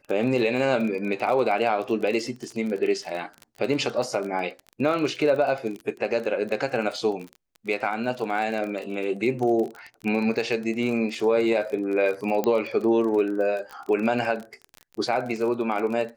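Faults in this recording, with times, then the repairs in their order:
surface crackle 32 per second −30 dBFS
0:12.44: click −12 dBFS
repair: click removal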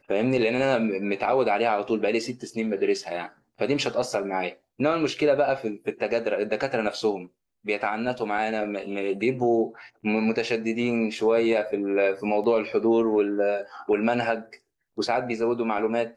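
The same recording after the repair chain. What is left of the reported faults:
0:12.44: click

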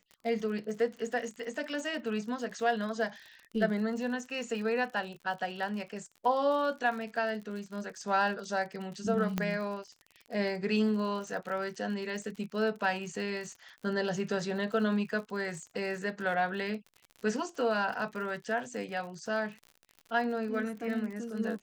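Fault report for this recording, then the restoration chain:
surface crackle 58 per second −40 dBFS
0:09.38: click −16 dBFS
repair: click removal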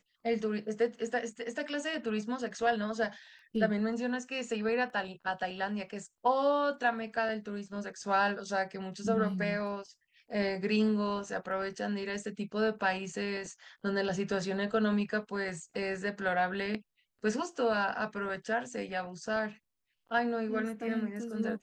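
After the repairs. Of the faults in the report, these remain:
none of them is left

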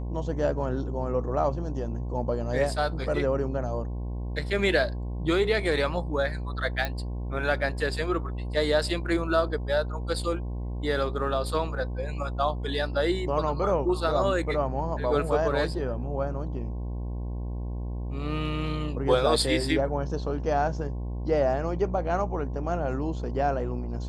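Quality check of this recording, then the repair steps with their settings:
mains buzz 60 Hz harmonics 18 −32 dBFS
0:06.85: click −15 dBFS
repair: click removal
hum removal 60 Hz, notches 18

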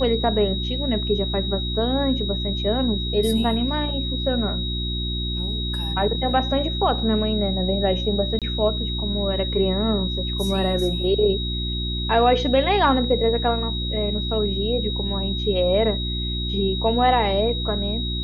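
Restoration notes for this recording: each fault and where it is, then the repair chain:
mains hum 60 Hz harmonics 6 −27 dBFS
whistle 3,800 Hz −28 dBFS
0:08.39–0:08.42: drop-out 27 ms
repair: notch filter 3,800 Hz, Q 30
hum removal 60 Hz, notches 6
repair the gap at 0:08.39, 27 ms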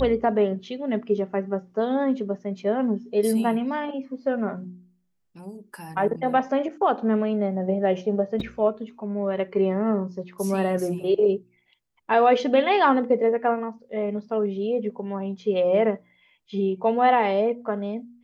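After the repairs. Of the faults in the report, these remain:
none of them is left

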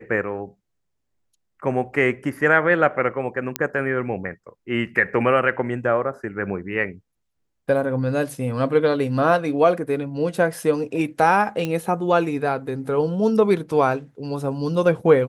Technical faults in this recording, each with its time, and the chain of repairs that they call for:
0:03.56: click −5 dBFS
0:11.65: click −13 dBFS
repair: click removal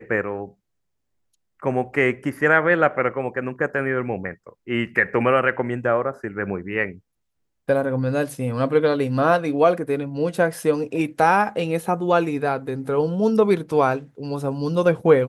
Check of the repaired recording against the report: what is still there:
none of them is left

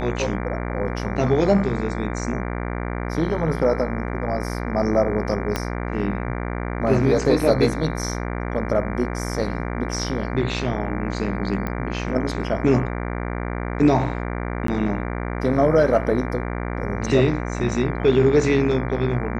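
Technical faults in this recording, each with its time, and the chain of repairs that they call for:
mains buzz 60 Hz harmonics 39 −27 dBFS
0:05.56: click −8 dBFS
0:11.67: click −14 dBFS
0:14.67–0:14.68: drop-out 13 ms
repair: click removal
hum removal 60 Hz, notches 39
repair the gap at 0:14.67, 13 ms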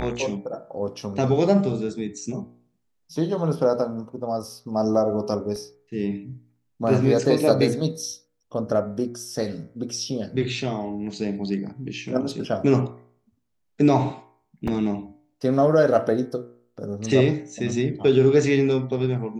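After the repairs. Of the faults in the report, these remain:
0:05.56: click

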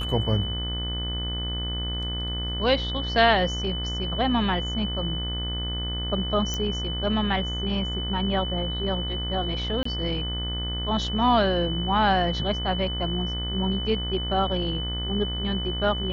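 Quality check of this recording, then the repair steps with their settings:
mains buzz 60 Hz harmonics 37 −31 dBFS
whistle 3,000 Hz −31 dBFS
0:06.54: click −15 dBFS
0:09.83–0:09.85: drop-out 24 ms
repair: click removal
hum removal 60 Hz, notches 37
notch filter 3,000 Hz, Q 30
repair the gap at 0:09.83, 24 ms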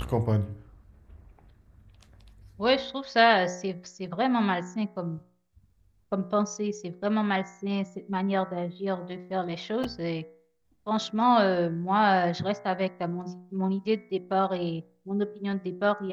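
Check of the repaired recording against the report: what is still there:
none of them is left

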